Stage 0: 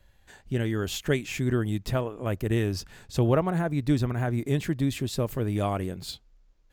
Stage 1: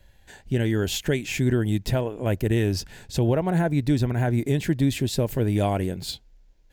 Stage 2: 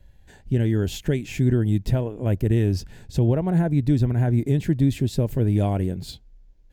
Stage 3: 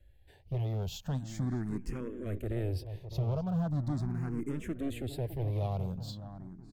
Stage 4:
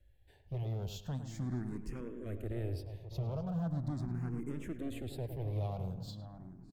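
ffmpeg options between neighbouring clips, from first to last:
-af "equalizer=f=1200:t=o:w=0.23:g=-14,alimiter=limit=0.15:level=0:latency=1:release=158,volume=1.78"
-af "lowshelf=f=420:g=11,volume=0.473"
-filter_complex "[0:a]asoftclip=type=hard:threshold=0.106,asplit=2[s0][s1];[s1]adelay=609,lowpass=f=1500:p=1,volume=0.299,asplit=2[s2][s3];[s3]adelay=609,lowpass=f=1500:p=1,volume=0.4,asplit=2[s4][s5];[s5]adelay=609,lowpass=f=1500:p=1,volume=0.4,asplit=2[s6][s7];[s7]adelay=609,lowpass=f=1500:p=1,volume=0.4[s8];[s0][s2][s4][s6][s8]amix=inputs=5:normalize=0,asplit=2[s9][s10];[s10]afreqshift=0.4[s11];[s9][s11]amix=inputs=2:normalize=1,volume=0.422"
-filter_complex "[0:a]asplit=2[s0][s1];[s1]adelay=106,lowpass=f=1900:p=1,volume=0.355,asplit=2[s2][s3];[s3]adelay=106,lowpass=f=1900:p=1,volume=0.33,asplit=2[s4][s5];[s5]adelay=106,lowpass=f=1900:p=1,volume=0.33,asplit=2[s6][s7];[s7]adelay=106,lowpass=f=1900:p=1,volume=0.33[s8];[s0][s2][s4][s6][s8]amix=inputs=5:normalize=0,volume=0.562"

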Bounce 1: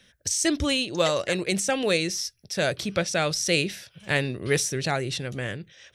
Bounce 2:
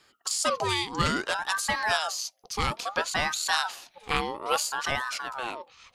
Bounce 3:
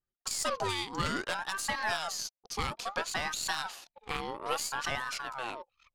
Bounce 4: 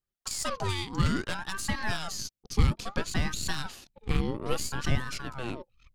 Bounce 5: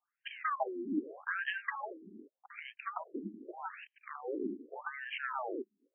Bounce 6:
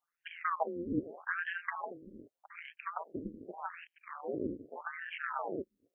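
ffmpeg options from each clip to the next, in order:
-af "aeval=exprs='val(0)*sin(2*PI*1000*n/s+1000*0.4/0.6*sin(2*PI*0.6*n/s))':c=same"
-af "aeval=exprs='0.376*(cos(1*acos(clip(val(0)/0.376,-1,1)))-cos(1*PI/2))+0.0188*(cos(8*acos(clip(val(0)/0.376,-1,1)))-cos(8*PI/2))':c=same,alimiter=limit=0.168:level=0:latency=1:release=159,anlmdn=0.01,volume=0.631"
-af "asubboost=boost=12:cutoff=250"
-af "acompressor=threshold=0.0141:ratio=6,afftfilt=real='re*between(b*sr/1024,280*pow(2300/280,0.5+0.5*sin(2*PI*0.83*pts/sr))/1.41,280*pow(2300/280,0.5+0.5*sin(2*PI*0.83*pts/sr))*1.41)':imag='im*between(b*sr/1024,280*pow(2300/280,0.5+0.5*sin(2*PI*0.83*pts/sr))/1.41,280*pow(2300/280,0.5+0.5*sin(2*PI*0.83*pts/sr))*1.41)':win_size=1024:overlap=0.75,volume=3.98"
-filter_complex "[0:a]acrossover=split=2600[s0][s1];[s1]acompressor=threshold=0.00158:ratio=4:attack=1:release=60[s2];[s0][s2]amix=inputs=2:normalize=0,tremolo=f=170:d=0.667,volume=1.5"

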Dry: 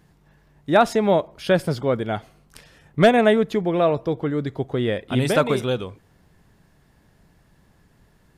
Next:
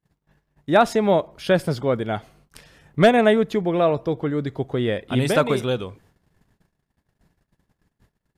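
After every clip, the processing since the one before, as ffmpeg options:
-af "agate=range=0.0355:threshold=0.002:ratio=16:detection=peak"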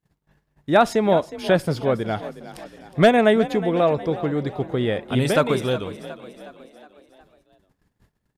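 -filter_complex "[0:a]asplit=6[s0][s1][s2][s3][s4][s5];[s1]adelay=364,afreqshift=35,volume=0.178[s6];[s2]adelay=728,afreqshift=70,volume=0.0944[s7];[s3]adelay=1092,afreqshift=105,volume=0.0501[s8];[s4]adelay=1456,afreqshift=140,volume=0.0266[s9];[s5]adelay=1820,afreqshift=175,volume=0.014[s10];[s0][s6][s7][s8][s9][s10]amix=inputs=6:normalize=0"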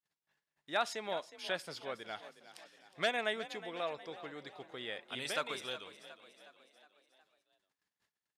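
-af "bandpass=f=4300:t=q:w=0.54:csg=0,volume=0.398"

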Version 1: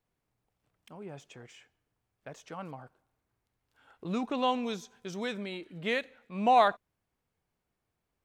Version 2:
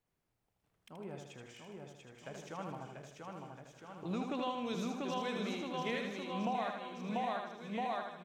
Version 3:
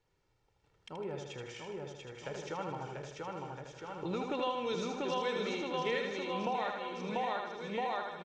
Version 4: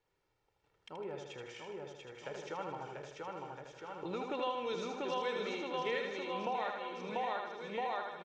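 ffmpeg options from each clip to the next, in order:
-filter_complex "[0:a]asplit=2[s0][s1];[s1]aecho=0:1:690|1311|1870|2373|2826:0.631|0.398|0.251|0.158|0.1[s2];[s0][s2]amix=inputs=2:normalize=0,acompressor=threshold=0.0282:ratio=10,asplit=2[s3][s4];[s4]aecho=0:1:78|156|234|312|390|468:0.562|0.276|0.135|0.0662|0.0324|0.0159[s5];[s3][s5]amix=inputs=2:normalize=0,volume=0.708"
-filter_complex "[0:a]lowpass=f=6700:w=0.5412,lowpass=f=6700:w=1.3066,aecho=1:1:2.2:0.54,asplit=2[s0][s1];[s1]acompressor=threshold=0.00501:ratio=6,volume=1.26[s2];[s0][s2]amix=inputs=2:normalize=0"
-af "bass=f=250:g=-7,treble=f=4000:g=-4,volume=0.841"

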